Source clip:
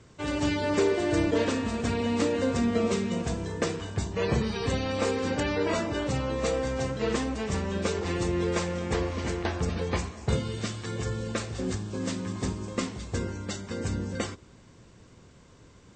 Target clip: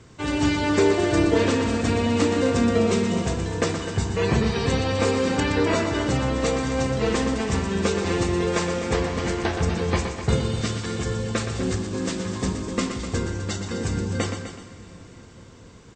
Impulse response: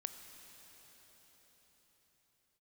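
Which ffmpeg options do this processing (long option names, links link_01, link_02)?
-filter_complex "[0:a]bandreject=frequency=580:width=13,aecho=1:1:254:0.282,asplit=2[link_01][link_02];[1:a]atrim=start_sample=2205,adelay=121[link_03];[link_02][link_03]afir=irnorm=-1:irlink=0,volume=-5dB[link_04];[link_01][link_04]amix=inputs=2:normalize=0,volume=5dB"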